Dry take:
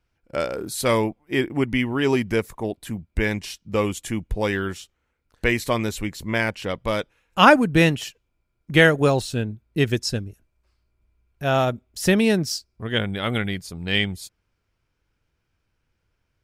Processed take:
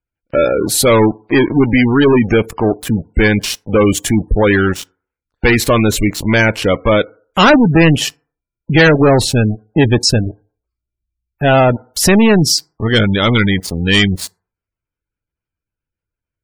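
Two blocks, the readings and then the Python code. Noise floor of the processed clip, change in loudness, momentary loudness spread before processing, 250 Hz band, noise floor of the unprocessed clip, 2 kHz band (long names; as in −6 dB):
below −85 dBFS, +10.0 dB, 14 LU, +11.0 dB, −74 dBFS, +8.0 dB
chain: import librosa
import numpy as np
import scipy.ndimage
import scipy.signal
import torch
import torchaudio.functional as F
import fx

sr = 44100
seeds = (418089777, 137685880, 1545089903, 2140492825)

y = fx.leveller(x, sr, passes=5)
y = fx.rev_fdn(y, sr, rt60_s=0.46, lf_ratio=0.8, hf_ratio=0.45, size_ms=20.0, drr_db=19.5)
y = fx.spec_gate(y, sr, threshold_db=-25, keep='strong')
y = F.gain(torch.from_numpy(y), -2.5).numpy()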